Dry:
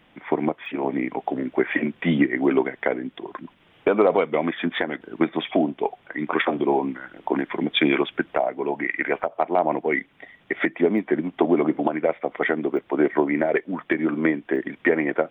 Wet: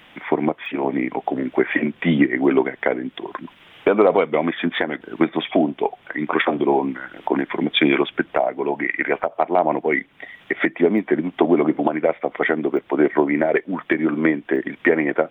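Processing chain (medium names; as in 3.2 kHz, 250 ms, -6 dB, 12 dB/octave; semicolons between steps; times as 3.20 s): tape noise reduction on one side only encoder only; trim +3 dB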